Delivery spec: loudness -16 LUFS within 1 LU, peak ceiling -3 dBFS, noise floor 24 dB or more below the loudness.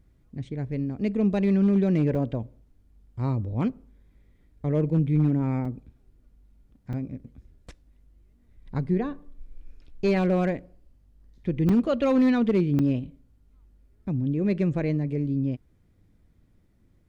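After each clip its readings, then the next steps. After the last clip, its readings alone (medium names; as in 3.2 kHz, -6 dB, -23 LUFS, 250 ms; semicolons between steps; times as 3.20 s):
clipped samples 0.4%; clipping level -15.0 dBFS; dropouts 5; longest dropout 4.0 ms; loudness -25.5 LUFS; peak level -15.0 dBFS; loudness target -16.0 LUFS
-> clip repair -15 dBFS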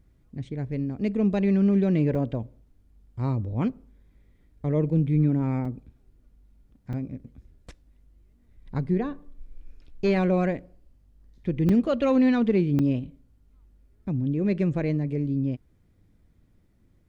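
clipped samples 0.0%; dropouts 5; longest dropout 4.0 ms
-> interpolate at 2.15/5.65/6.93/11.69/12.79 s, 4 ms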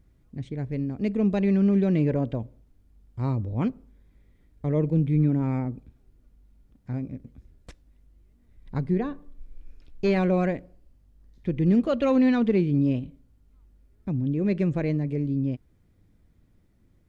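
dropouts 0; loudness -25.5 LUFS; peak level -11.5 dBFS; loudness target -16.0 LUFS
-> trim +9.5 dB; peak limiter -3 dBFS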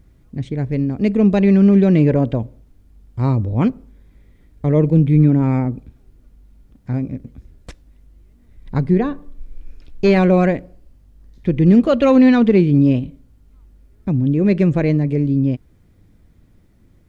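loudness -16.0 LUFS; peak level -3.0 dBFS; noise floor -53 dBFS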